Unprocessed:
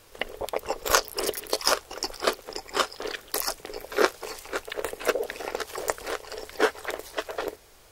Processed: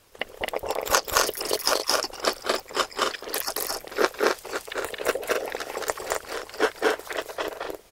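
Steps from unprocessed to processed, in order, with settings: harmonic-percussive split harmonic -10 dB; loudspeakers at several distances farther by 76 m -1 dB, 91 m -5 dB; added harmonics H 2 -21 dB, 4 -31 dB, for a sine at -2.5 dBFS

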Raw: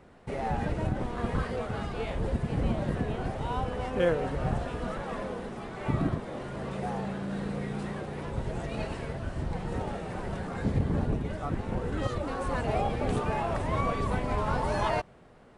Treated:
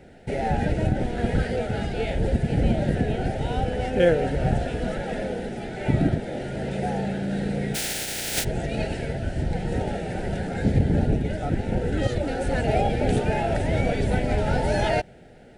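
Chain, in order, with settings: 7.74–8.43 spectral contrast lowered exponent 0.16; Butterworth band-stop 1100 Hz, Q 1.8; gain +7 dB

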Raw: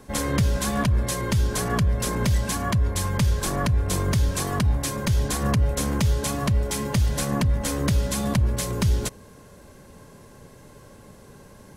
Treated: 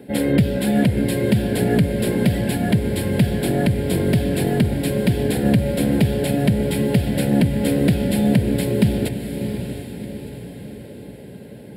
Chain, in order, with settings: HPF 190 Hz 12 dB/oct; tilt shelf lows +5 dB, about 1100 Hz; fixed phaser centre 2700 Hz, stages 4; diffused feedback echo 0.699 s, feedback 48%, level -8 dB; gain +7.5 dB

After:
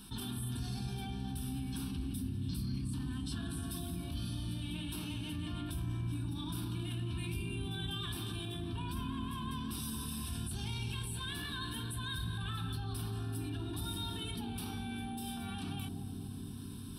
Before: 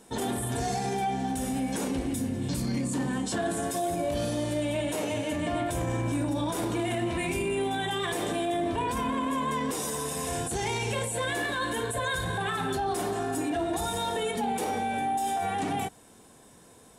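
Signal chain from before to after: passive tone stack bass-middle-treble 6-0-2; reverse; upward compressor, threshold -58 dBFS; reverse; fixed phaser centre 2000 Hz, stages 6; analogue delay 0.246 s, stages 1024, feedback 77%, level -5 dB; fast leveller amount 50%; gain +7.5 dB

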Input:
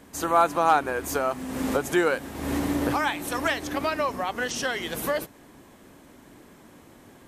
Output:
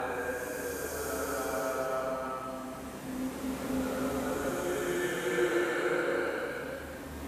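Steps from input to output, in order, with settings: Paulstretch 4.9×, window 0.50 s, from 0.88; added harmonics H 6 -38 dB, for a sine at -9.5 dBFS; gain -7 dB

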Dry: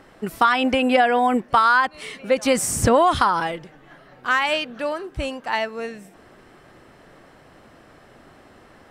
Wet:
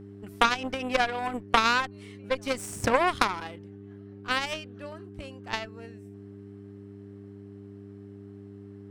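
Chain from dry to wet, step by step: added harmonics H 2 -11 dB, 3 -11 dB, 8 -44 dB, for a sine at -4.5 dBFS; buzz 100 Hz, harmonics 4, -44 dBFS -1 dB/oct; gain -1 dB

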